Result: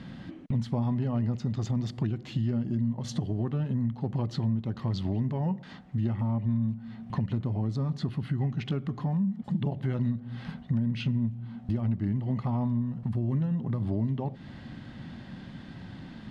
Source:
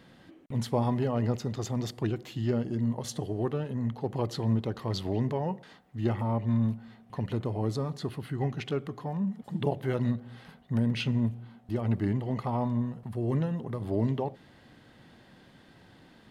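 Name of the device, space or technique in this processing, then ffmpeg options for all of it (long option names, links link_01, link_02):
jukebox: -af "lowpass=5700,lowshelf=frequency=290:width_type=q:width=1.5:gain=7,acompressor=threshold=-35dB:ratio=4,bandreject=frequency=460:width=12,volume=7dB"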